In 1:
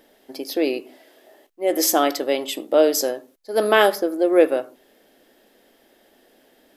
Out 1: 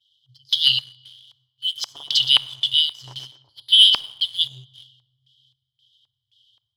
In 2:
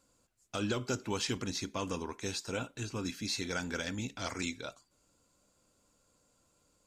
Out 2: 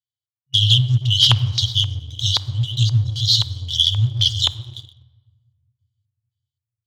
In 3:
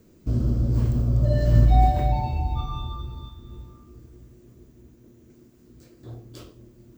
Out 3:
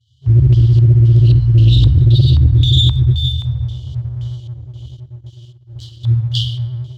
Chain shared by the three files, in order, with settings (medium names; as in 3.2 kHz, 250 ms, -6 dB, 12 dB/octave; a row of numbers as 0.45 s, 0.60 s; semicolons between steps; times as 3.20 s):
expander -47 dBFS; high-pass 97 Hz 24 dB/octave; FFT band-reject 130–2900 Hz; dynamic bell 150 Hz, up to -7 dB, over -44 dBFS, Q 3.3; level rider gain up to 4 dB; tape echo 124 ms, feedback 63%, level -6.5 dB, low-pass 1.6 kHz; reverse; compression 16:1, threshold -29 dBFS; reverse; LFO low-pass square 1.9 Hz 980–2900 Hz; simulated room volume 1600 m³, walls mixed, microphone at 0.32 m; waveshaping leveller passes 1; loudspeaker Doppler distortion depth 0.12 ms; peak normalisation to -2 dBFS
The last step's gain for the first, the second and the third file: +14.5 dB, +18.5 dB, +21.5 dB